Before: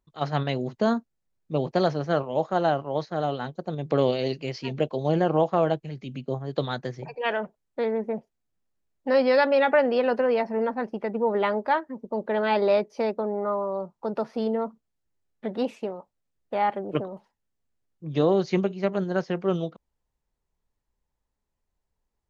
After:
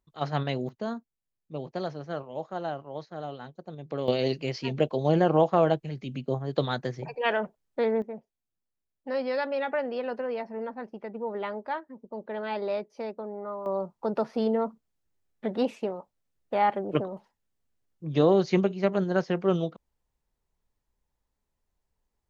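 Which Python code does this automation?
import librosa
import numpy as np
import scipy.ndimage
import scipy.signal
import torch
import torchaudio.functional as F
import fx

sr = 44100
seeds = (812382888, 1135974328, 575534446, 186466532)

y = fx.gain(x, sr, db=fx.steps((0.0, -2.5), (0.69, -10.0), (4.08, 0.5), (8.02, -9.0), (13.66, 0.5)))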